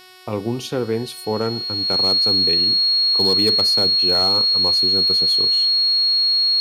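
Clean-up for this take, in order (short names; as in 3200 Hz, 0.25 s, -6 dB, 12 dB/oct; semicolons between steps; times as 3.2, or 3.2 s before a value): clip repair -10.5 dBFS; de-hum 369.6 Hz, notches 15; notch 4300 Hz, Q 30; expander -21 dBFS, range -21 dB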